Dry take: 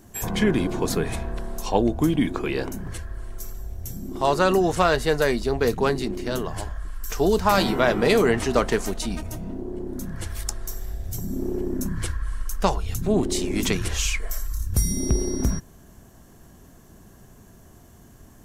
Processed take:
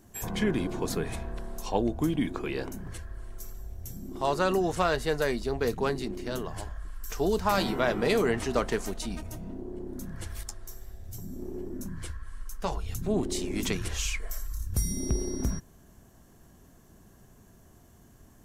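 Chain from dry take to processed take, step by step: 10.43–12.72 s: flange 1.5 Hz, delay 8.4 ms, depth 5.6 ms, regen -37%; trim -6.5 dB

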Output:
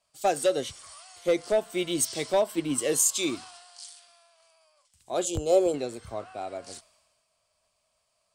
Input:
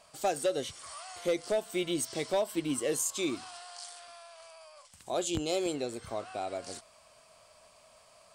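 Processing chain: 5.25–5.74 s: graphic EQ 250/500/2000/4000 Hz -10/+9/-11/-6 dB; three bands expanded up and down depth 70%; trim +3 dB

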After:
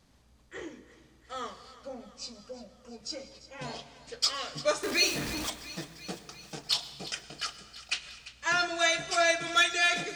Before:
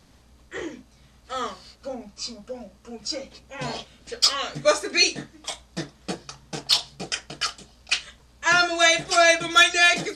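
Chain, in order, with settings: 4.83–5.50 s: jump at every zero crossing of -22 dBFS; thinning echo 345 ms, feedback 69%, high-pass 800 Hz, level -15.5 dB; reverberation RT60 1.6 s, pre-delay 95 ms, DRR 14 dB; trim -8.5 dB

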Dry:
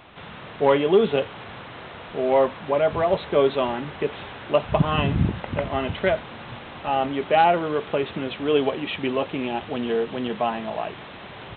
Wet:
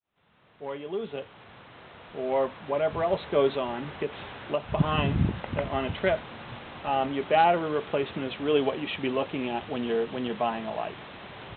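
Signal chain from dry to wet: fade-in on the opening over 3.68 s; 3.53–4.78 s: compression 2.5:1, threshold -23 dBFS, peak gain reduction 6.5 dB; trim -3.5 dB

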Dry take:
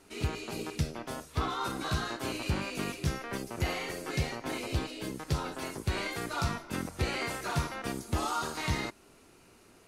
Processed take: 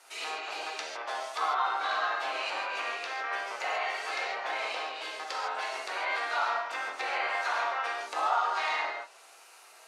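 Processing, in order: low-pass that closes with the level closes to 2 kHz, closed at -29.5 dBFS; high-pass 650 Hz 24 dB/octave; gated-style reverb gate 180 ms flat, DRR -2 dB; trim +4 dB

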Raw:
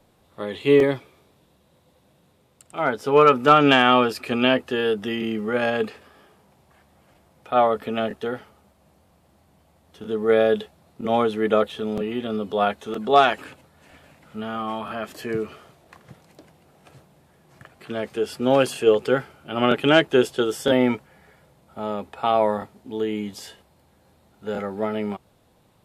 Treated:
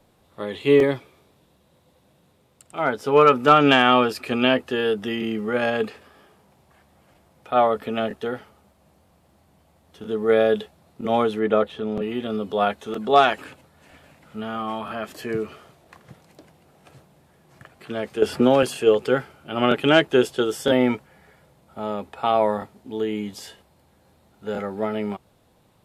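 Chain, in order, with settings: 11.39–12.02 s: treble shelf 4.4 kHz -11.5 dB; 18.22–18.63 s: three bands compressed up and down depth 100%

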